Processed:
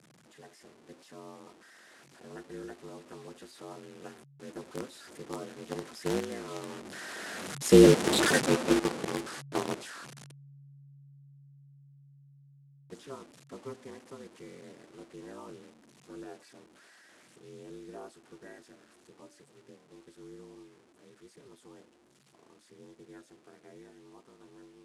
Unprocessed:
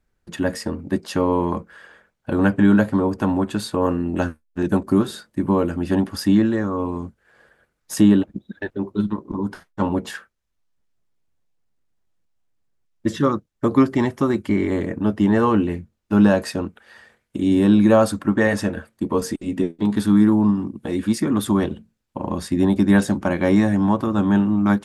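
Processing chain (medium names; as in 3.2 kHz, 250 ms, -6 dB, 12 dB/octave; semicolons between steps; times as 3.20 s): one-bit delta coder 64 kbps, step -22.5 dBFS; Doppler pass-by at 8.22 s, 12 m/s, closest 3.5 m; ring modulator 140 Hz; in parallel at -3.5 dB: bit crusher 5-bit; on the sum: Chebyshev band-pass 210–9800 Hz, order 2; trim +3 dB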